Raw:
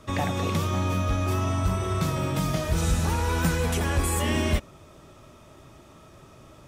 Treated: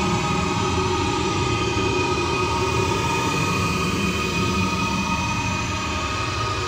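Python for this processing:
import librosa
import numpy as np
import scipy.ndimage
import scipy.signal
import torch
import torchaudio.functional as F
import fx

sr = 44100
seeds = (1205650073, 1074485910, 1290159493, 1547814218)

y = fx.ripple_eq(x, sr, per_octave=0.71, db=16)
y = fx.dmg_noise_band(y, sr, seeds[0], low_hz=950.0, high_hz=5200.0, level_db=-37.0)
y = fx.paulstretch(y, sr, seeds[1], factor=23.0, window_s=0.05, from_s=0.78)
y = F.gain(torch.from_numpy(y), 4.0).numpy()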